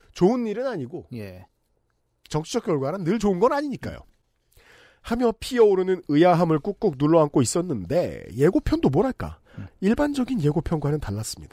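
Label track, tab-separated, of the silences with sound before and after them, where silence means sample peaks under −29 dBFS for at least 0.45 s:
1.300000	2.260000	silence
3.980000	5.070000	silence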